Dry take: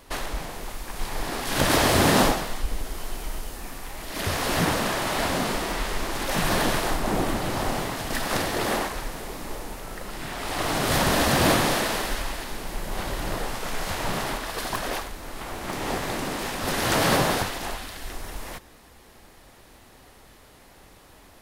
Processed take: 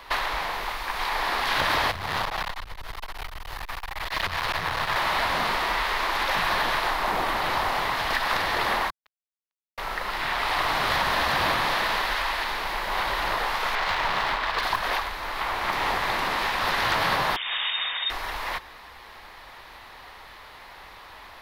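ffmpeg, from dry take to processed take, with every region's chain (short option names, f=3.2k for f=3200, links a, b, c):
-filter_complex "[0:a]asettb=1/sr,asplit=3[a][b][c];[a]atrim=end=1.914[d];[b]atrim=start=1.91:end=4.96,asetpts=PTS-STARTPTS,afade=t=in:d=0.004:c=qsin,afade=t=out:st=3.046:d=0.004:c=qsin,lowshelf=f=170:t=q:w=1.5:g=11.5,acompressor=threshold=-22dB:ratio=16:attack=3.2:release=140:knee=1:detection=peak,aeval=exprs='clip(val(0),-1,0.0237)':c=same[e];[c]atrim=start=4.956[f];[d][e]acrossfade=d=0.004:c1=hsin:c2=qsin[g];[g][f]acrossfade=d=0.004:c1=qsin:c2=hsin,asettb=1/sr,asplit=3[h][i][j];[h]atrim=end=8.904[k];[i]atrim=start=8.9:end=9.78,asetpts=PTS-STARTPTS,afade=t=in:d=0.004:c=qsin,afade=t=out:st=0.876:d=0.004:c=qsin,highshelf=f=2.3k:g=-6.5,acrusher=bits=2:mix=0:aa=0.5[l];[j]atrim=start=9.776[m];[k][l]acrossfade=d=0.004:c1=hsin:c2=qsin[n];[n][m]acrossfade=d=0.004:c1=qsin:c2=hsin,asettb=1/sr,asplit=3[o][p][q];[o]atrim=end=13.754[r];[p]atrim=start=13.75:end=14.63,asetpts=PTS-STARTPTS,afade=t=in:d=0.004:c=qsin,afade=t=out:st=0.876:d=0.004:c=qsin,highshelf=f=3.3k:g=4.5,adynamicsmooth=sensitivity=6:basefreq=1.7k[s];[q]atrim=start=14.626[t];[r][s]acrossfade=d=0.004:c1=hsin:c2=qsin[u];[u][t]acrossfade=d=0.004:c1=qsin:c2=hsin,asettb=1/sr,asplit=3[v][w][x];[v]atrim=end=17.364[y];[w]atrim=start=17.36:end=18.1,asetpts=PTS-STARTPTS,afade=t=in:d=0.004:c=qsin,afade=t=out:st=0.736:d=0.004:c=qsin,acompressor=threshold=-30dB:ratio=12:attack=3.2:release=140:knee=1:detection=peak,acrusher=bits=2:mode=log:mix=0:aa=0.000001,lowpass=f=3.1k:t=q:w=0.5098,lowpass=f=3.1k:t=q:w=0.6013,lowpass=f=3.1k:t=q:w=0.9,lowpass=f=3.1k:t=q:w=2.563,afreqshift=-3700[z];[x]atrim=start=18.096[aa];[y][z]acrossfade=d=0.004:c1=hsin:c2=qsin[ab];[ab][aa]acrossfade=d=0.004:c1=qsin:c2=hsin,equalizer=f=125:t=o:w=1:g=-4,equalizer=f=250:t=o:w=1:g=-6,equalizer=f=1k:t=o:w=1:g=11,equalizer=f=2k:t=o:w=1:g=8,equalizer=f=4k:t=o:w=1:g=9,equalizer=f=8k:t=o:w=1:g=-9,acrossover=split=230|7200[ac][ad][ae];[ac]acompressor=threshold=-35dB:ratio=4[af];[ad]acompressor=threshold=-23dB:ratio=4[ag];[ae]acompressor=threshold=-45dB:ratio=4[ah];[af][ag][ah]amix=inputs=3:normalize=0"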